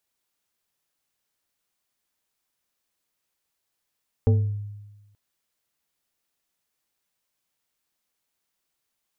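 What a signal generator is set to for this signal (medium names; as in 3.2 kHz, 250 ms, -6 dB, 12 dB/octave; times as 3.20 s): FM tone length 0.88 s, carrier 103 Hz, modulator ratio 3.31, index 0.76, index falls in 0.56 s exponential, decay 1.19 s, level -13 dB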